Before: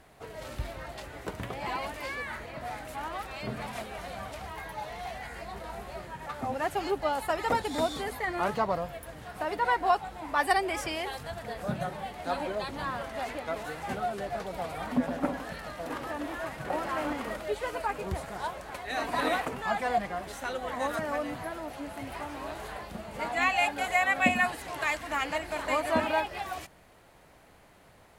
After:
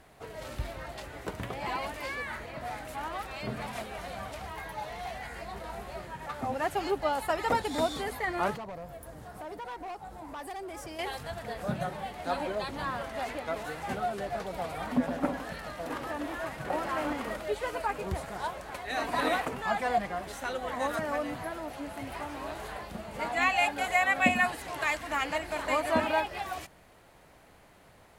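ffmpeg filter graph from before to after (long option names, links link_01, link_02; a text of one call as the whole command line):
ffmpeg -i in.wav -filter_complex "[0:a]asettb=1/sr,asplit=3[link_01][link_02][link_03];[link_01]atrim=end=8.564[link_04];[link_02]atrim=start=8.56:end=10.99,asetpts=PTS-STARTPTS,afade=type=in:duration=0.004:curve=qsin,afade=type=out:start_time=2.426:duration=0.004:curve=qsin,equalizer=frequency=2700:width=0.74:gain=-9.5,acompressor=threshold=-41dB:ratio=2:attack=3.2:release=140:knee=1:detection=peak,asoftclip=type=hard:threshold=-36.5dB[link_05];[link_03]atrim=start=10.986[link_06];[link_04][link_05]acrossfade=duration=0.004:curve1=hsin:curve2=qsin[link_07];[link_07][link_06]acrossfade=duration=0.004:curve1=qsin:curve2=hsin" out.wav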